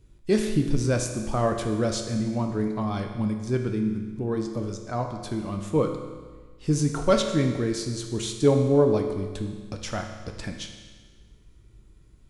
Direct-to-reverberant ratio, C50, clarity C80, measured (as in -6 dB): 3.5 dB, 6.0 dB, 7.5 dB